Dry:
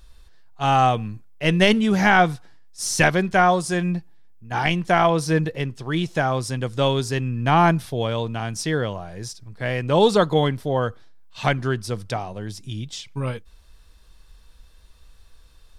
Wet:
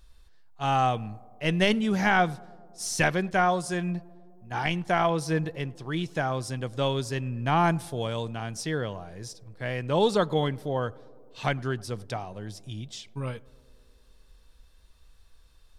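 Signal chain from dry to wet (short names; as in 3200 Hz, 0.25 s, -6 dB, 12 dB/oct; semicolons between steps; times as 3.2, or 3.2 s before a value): 7.63–8.29 bell 8400 Hz +5.5 dB -> +12.5 dB 0.78 oct; tape echo 0.105 s, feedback 90%, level -23 dB, low-pass 1200 Hz; gain -6.5 dB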